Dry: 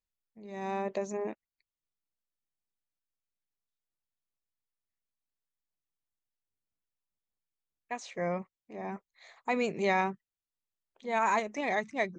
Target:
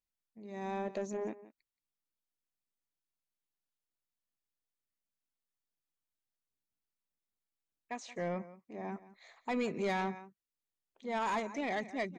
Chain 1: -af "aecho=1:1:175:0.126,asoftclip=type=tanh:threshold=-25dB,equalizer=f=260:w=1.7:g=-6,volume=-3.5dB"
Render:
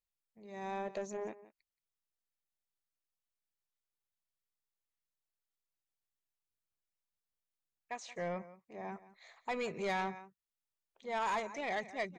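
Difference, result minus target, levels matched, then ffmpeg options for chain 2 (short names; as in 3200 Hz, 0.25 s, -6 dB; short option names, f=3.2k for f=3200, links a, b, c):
250 Hz band -5.5 dB
-af "aecho=1:1:175:0.126,asoftclip=type=tanh:threshold=-25dB,equalizer=f=260:w=1.7:g=4.5,volume=-3.5dB"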